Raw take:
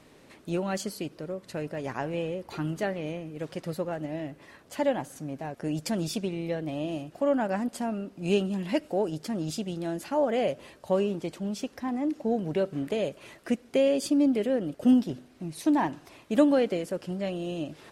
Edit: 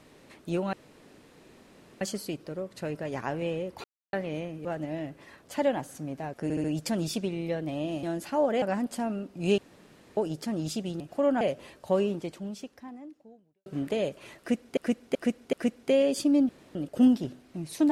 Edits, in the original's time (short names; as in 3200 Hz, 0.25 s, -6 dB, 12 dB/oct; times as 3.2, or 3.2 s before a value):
0.73 insert room tone 1.28 s
2.56–2.85 mute
3.37–3.86 cut
5.64 stutter 0.07 s, 4 plays
7.03–7.44 swap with 9.82–10.41
8.4–8.99 room tone
11.09–12.66 fade out quadratic
13.39–13.77 loop, 4 plays
14.35–14.61 room tone